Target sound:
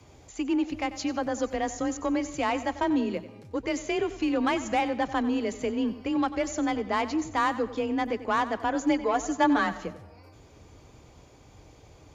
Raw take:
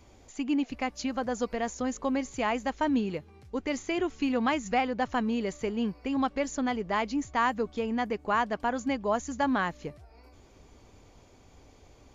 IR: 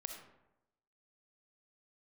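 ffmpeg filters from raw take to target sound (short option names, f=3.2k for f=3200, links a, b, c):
-filter_complex "[0:a]aeval=exprs='0.178*(cos(1*acos(clip(val(0)/0.178,-1,1)))-cos(1*PI/2))+0.0126*(cos(5*acos(clip(val(0)/0.178,-1,1)))-cos(5*PI/2))':c=same,asettb=1/sr,asplit=3[a][b][c];[a]atrim=end=8.744[d];[b]atrim=start=8.74:end=9.85,asetpts=PTS-STARTPTS,afade=t=in:d=0.004:c=qsin,afade=t=out:st=1.106:d=0.004:c=qsin,aecho=1:1:7.1:0.68,atrim=end_sample=48951[e];[c]atrim=start=9.846[f];[d][e]acrossfade=d=0.004:c1=hsin:c2=qsin[g];[g][f]acrossfade=d=0.004:c1=qsin:c2=hsin,afreqshift=28,asplit=2[h][i];[1:a]atrim=start_sample=2205,adelay=93[j];[i][j]afir=irnorm=-1:irlink=0,volume=-11dB[k];[h][k]amix=inputs=2:normalize=0"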